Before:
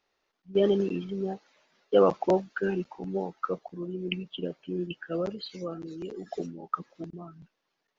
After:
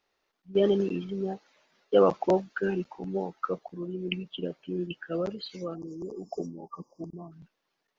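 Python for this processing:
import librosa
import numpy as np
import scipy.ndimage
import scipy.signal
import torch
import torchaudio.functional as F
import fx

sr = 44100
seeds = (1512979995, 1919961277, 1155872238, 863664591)

y = fx.spec_erase(x, sr, start_s=5.75, length_s=1.57, low_hz=1200.0, high_hz=4700.0)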